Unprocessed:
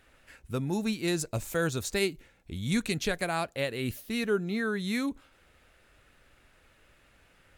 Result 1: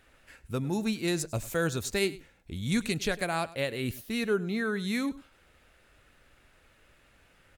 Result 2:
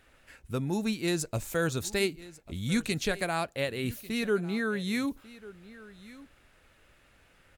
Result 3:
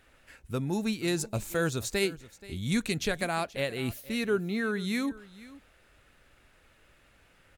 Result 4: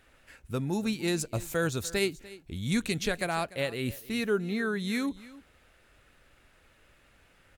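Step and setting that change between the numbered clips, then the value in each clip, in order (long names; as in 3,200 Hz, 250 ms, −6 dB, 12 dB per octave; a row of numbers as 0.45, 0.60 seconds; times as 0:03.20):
single-tap delay, delay time: 102, 1,144, 478, 295 milliseconds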